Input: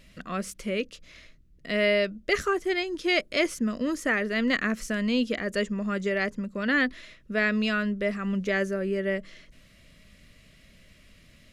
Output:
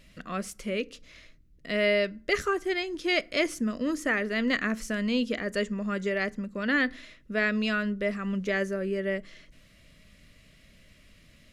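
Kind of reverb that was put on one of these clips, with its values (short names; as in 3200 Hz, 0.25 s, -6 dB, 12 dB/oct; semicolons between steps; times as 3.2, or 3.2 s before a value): FDN reverb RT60 0.45 s, low-frequency decay 1.4×, high-frequency decay 0.65×, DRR 18.5 dB; gain -1.5 dB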